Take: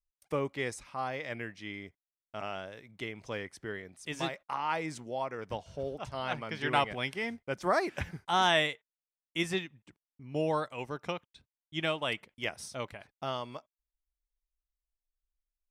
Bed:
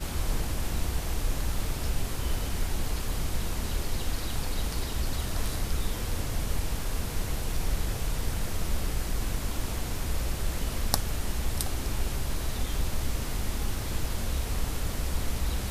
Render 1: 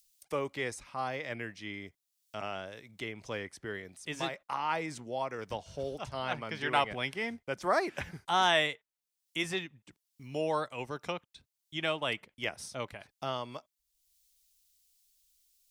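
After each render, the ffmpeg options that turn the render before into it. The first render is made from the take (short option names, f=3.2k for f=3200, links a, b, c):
-filter_complex "[0:a]acrossover=split=360|3200[a][b][c];[a]alimiter=level_in=13dB:limit=-24dB:level=0:latency=1,volume=-13dB[d];[c]acompressor=mode=upward:threshold=-48dB:ratio=2.5[e];[d][b][e]amix=inputs=3:normalize=0"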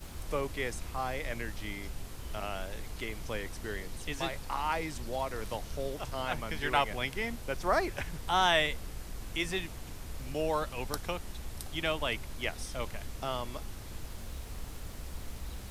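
-filter_complex "[1:a]volume=-12dB[a];[0:a][a]amix=inputs=2:normalize=0"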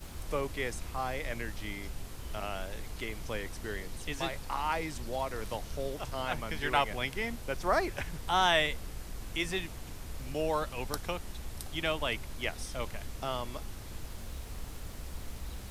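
-af anull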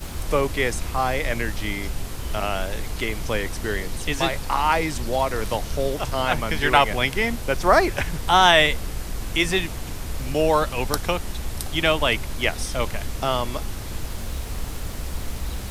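-af "volume=12dB,alimiter=limit=-3dB:level=0:latency=1"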